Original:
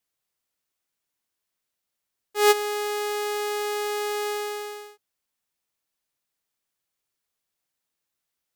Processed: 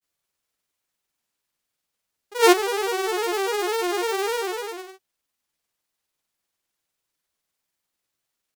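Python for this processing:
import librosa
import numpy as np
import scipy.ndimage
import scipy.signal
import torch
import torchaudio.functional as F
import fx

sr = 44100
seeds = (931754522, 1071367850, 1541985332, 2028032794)

y = fx.granulator(x, sr, seeds[0], grain_ms=100.0, per_s=20.0, spray_ms=30.0, spread_st=3)
y = y * 10.0 ** (4.5 / 20.0)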